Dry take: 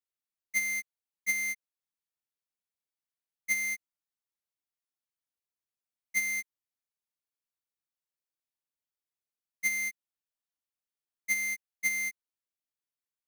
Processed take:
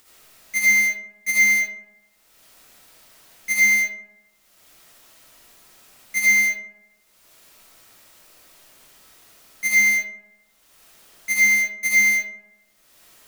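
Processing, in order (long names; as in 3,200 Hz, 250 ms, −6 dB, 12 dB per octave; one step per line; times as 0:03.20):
in parallel at −1 dB: upward compression, threshold −30 dBFS
on the sum: convolution reverb RT60 1.0 s, pre-delay 35 ms, DRR −8 dB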